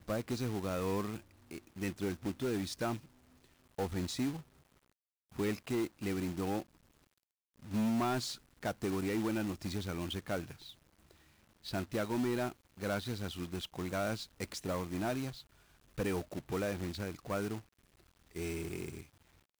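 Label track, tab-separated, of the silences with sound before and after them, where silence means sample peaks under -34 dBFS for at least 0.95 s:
4.310000	5.390000	silence
6.600000	7.740000	silence
10.410000	11.690000	silence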